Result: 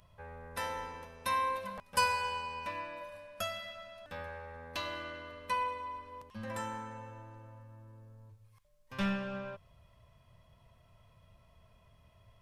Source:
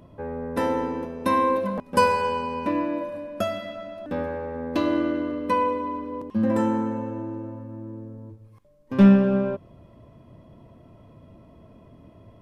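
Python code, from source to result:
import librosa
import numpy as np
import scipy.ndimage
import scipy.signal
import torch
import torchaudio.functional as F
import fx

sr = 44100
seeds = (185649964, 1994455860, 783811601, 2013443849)

y = fx.tone_stack(x, sr, knobs='10-0-10')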